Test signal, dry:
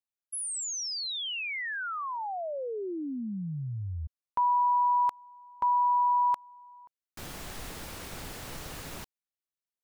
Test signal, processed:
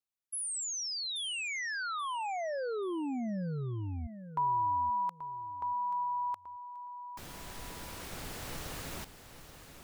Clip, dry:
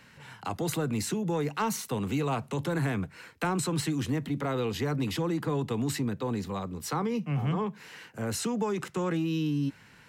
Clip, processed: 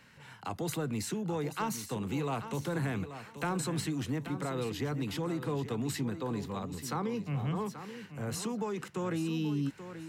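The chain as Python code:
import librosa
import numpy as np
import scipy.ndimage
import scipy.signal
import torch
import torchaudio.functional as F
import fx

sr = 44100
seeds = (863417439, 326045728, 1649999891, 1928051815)

p1 = fx.rider(x, sr, range_db=4, speed_s=2.0)
p2 = p1 + fx.echo_feedback(p1, sr, ms=832, feedback_pct=26, wet_db=-11, dry=0)
y = F.gain(torch.from_numpy(p2), -4.5).numpy()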